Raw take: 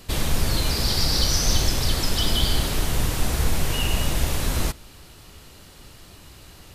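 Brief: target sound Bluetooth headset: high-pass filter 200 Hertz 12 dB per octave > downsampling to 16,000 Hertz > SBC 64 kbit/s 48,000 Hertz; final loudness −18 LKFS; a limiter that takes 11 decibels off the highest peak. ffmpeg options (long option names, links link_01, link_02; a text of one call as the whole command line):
ffmpeg -i in.wav -af "alimiter=limit=-17.5dB:level=0:latency=1,highpass=200,aresample=16000,aresample=44100,volume=12dB" -ar 48000 -c:a sbc -b:a 64k out.sbc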